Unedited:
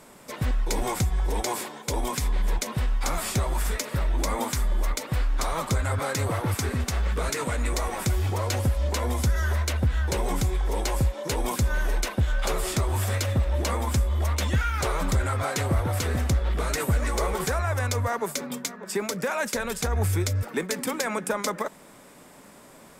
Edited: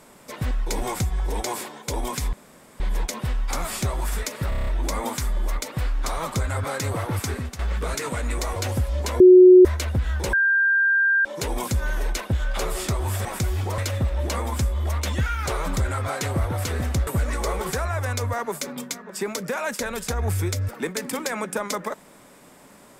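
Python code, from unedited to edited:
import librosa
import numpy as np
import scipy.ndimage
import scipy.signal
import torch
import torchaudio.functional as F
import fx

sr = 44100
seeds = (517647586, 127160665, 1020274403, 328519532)

y = fx.edit(x, sr, fx.insert_room_tone(at_s=2.33, length_s=0.47),
    fx.stutter(start_s=4.02, slice_s=0.03, count=7),
    fx.fade_out_to(start_s=6.66, length_s=0.28, floor_db=-12.0),
    fx.move(start_s=7.91, length_s=0.53, to_s=13.13),
    fx.bleep(start_s=9.08, length_s=0.45, hz=366.0, db=-6.0),
    fx.bleep(start_s=10.21, length_s=0.92, hz=1590.0, db=-16.0),
    fx.cut(start_s=16.42, length_s=0.39), tone=tone)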